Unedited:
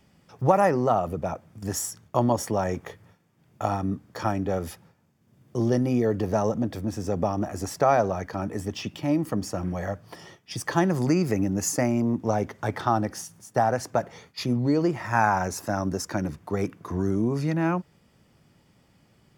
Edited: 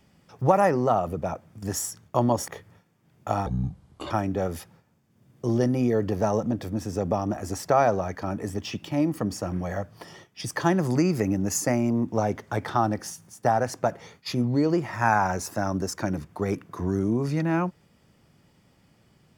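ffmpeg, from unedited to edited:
-filter_complex "[0:a]asplit=4[a][b][c][d];[a]atrim=end=2.482[e];[b]atrim=start=2.818:end=3.804[f];[c]atrim=start=3.8:end=4.22,asetpts=PTS-STARTPTS,asetrate=28665,aresample=44100,atrim=end_sample=28495,asetpts=PTS-STARTPTS[g];[d]atrim=start=4.216[h];[e][f]acrossfade=d=0.004:c1=hsin:c2=hsin[i];[i][g]acrossfade=d=0.004:c1=hsin:c2=hsin[j];[j][h]acrossfade=d=0.004:c1=hsin:c2=hsin"

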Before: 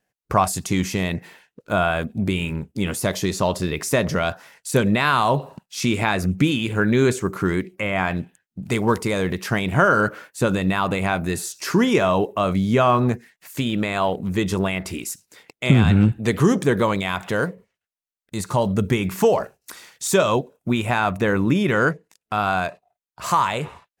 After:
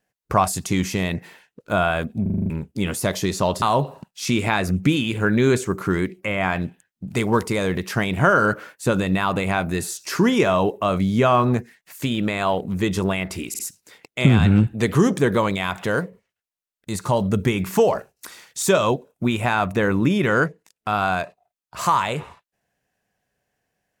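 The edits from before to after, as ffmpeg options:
-filter_complex "[0:a]asplit=11[a][b][c][d][e][f][g][h][i][j][k];[a]atrim=end=2.262[l];[b]atrim=start=2.218:end=2.262[m];[c]atrim=start=2.218:end=2.262[n];[d]atrim=start=2.218:end=2.262[o];[e]atrim=start=2.218:end=2.262[p];[f]atrim=start=2.218:end=2.262[q];[g]atrim=start=2.218:end=2.262[r];[h]atrim=start=2.498:end=3.622[s];[i]atrim=start=5.168:end=15.092[t];[j]atrim=start=15.038:end=15.092[u];[k]atrim=start=15.038[v];[l][m]acrossfade=d=0.004:c1=hsin:c2=hsin[w];[w][n]acrossfade=d=0.004:c1=hsin:c2=hsin[x];[x][o]acrossfade=d=0.004:c1=hsin:c2=hsin[y];[y][p]acrossfade=d=0.004:c1=hsin:c2=hsin[z];[z][q]acrossfade=d=0.004:c1=hsin:c2=hsin[aa];[aa][r]acrossfade=d=0.004:c1=hsin:c2=hsin[ab];[ab][s]acrossfade=d=0.004:c1=hsin:c2=hsin[ac];[ac][t]acrossfade=d=0.004:c1=hsin:c2=hsin[ad];[ad][u]acrossfade=d=0.004:c1=hsin:c2=hsin[ae];[ae][v]acrossfade=d=0.004:c1=hsin:c2=hsin"

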